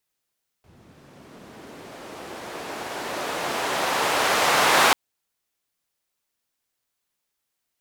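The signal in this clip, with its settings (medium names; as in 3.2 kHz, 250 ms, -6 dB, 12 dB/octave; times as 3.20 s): swept filtered noise white, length 4.29 s bandpass, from 100 Hz, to 920 Hz, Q 0.85, linear, gain ramp +29 dB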